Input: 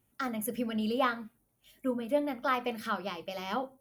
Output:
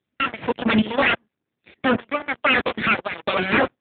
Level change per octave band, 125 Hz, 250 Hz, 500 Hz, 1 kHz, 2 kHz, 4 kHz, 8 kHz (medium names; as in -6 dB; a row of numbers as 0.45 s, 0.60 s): +14.0 dB, +9.5 dB, +9.0 dB, +9.5 dB, +18.0 dB, +14.5 dB, under -35 dB